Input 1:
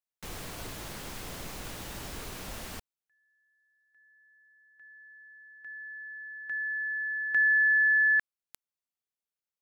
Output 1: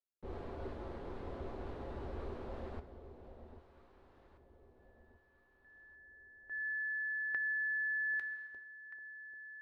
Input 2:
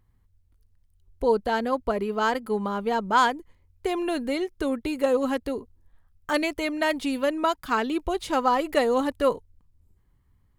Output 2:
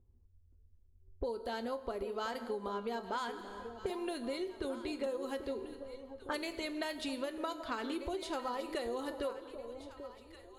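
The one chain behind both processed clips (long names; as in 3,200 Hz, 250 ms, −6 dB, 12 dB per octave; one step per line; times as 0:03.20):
graphic EQ with 15 bands 160 Hz −9 dB, 400 Hz +5 dB, 4,000 Hz +7 dB, 10,000 Hz +5 dB
low-pass that shuts in the quiet parts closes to 440 Hz, open at −21 dBFS
tuned comb filter 77 Hz, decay 0.16 s, harmonics odd, mix 60%
dense smooth reverb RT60 1.1 s, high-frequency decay 0.85×, DRR 11.5 dB
downward compressor 10 to 1, threshold −39 dBFS
high-shelf EQ 11,000 Hz +5.5 dB
on a send: delay that swaps between a low-pass and a high-pass 789 ms, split 840 Hz, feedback 56%, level −9.5 dB
on the sum: level +3.5 dB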